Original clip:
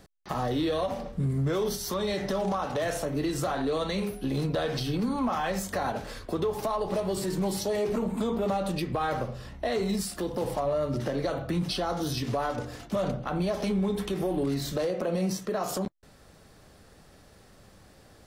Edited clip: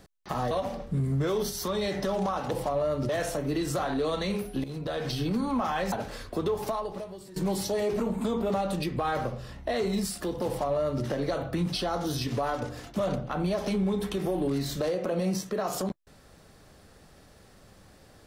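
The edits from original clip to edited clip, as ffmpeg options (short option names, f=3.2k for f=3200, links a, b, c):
-filter_complex "[0:a]asplit=7[a][b][c][d][e][f][g];[a]atrim=end=0.512[h];[b]atrim=start=0.768:end=2.772[i];[c]atrim=start=10.418:end=11.002[j];[d]atrim=start=2.768:end=4.32,asetpts=PTS-STARTPTS,afade=t=out:st=1.548:d=0.004:c=hsin:silence=0.251189[k];[e]atrim=start=4.32:end=5.602,asetpts=PTS-STARTPTS,afade=t=in:d=0.52:silence=0.251189[l];[f]atrim=start=5.878:end=7.32,asetpts=PTS-STARTPTS,afade=t=out:st=0.752:d=0.69:c=qua:silence=0.133352[m];[g]atrim=start=7.32,asetpts=PTS-STARTPTS,afade=t=in:d=0.004:c=hsin:silence=0.133352[n];[h][i]acrossfade=d=0.004:c1=hsin:c2=hsin[o];[o][j]acrossfade=d=0.004:c1=hsin:c2=hsin[p];[k][l]concat=n=2:v=0:a=1[q];[p][q]acrossfade=d=0.004:c1=hsin:c2=hsin[r];[m][n]concat=n=2:v=0:a=1[s];[r][s]acrossfade=d=0.004:c1=hsin:c2=hsin"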